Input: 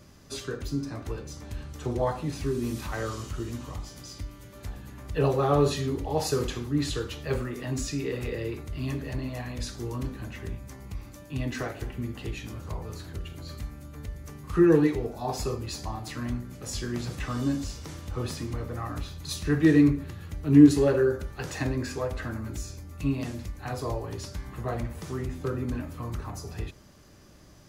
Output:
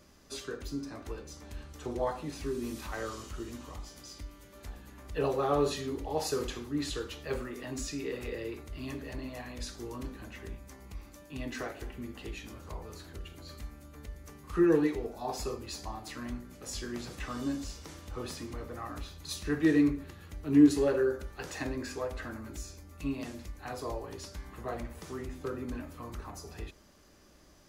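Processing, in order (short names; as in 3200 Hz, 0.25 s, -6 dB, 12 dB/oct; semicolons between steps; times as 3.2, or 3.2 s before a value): bell 120 Hz -11 dB 1 oct; gain -4 dB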